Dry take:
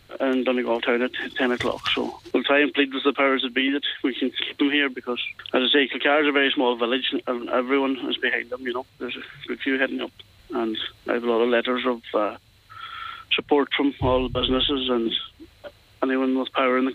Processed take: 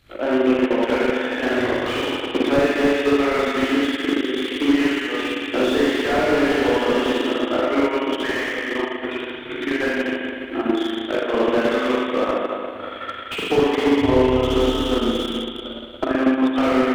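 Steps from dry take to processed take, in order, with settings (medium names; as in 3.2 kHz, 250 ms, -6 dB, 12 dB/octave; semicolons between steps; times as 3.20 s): spring tank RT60 2.7 s, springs 39/57 ms, chirp 75 ms, DRR -8.5 dB; transient shaper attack +7 dB, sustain -9 dB; slew-rate limiter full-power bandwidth 240 Hz; trim -5.5 dB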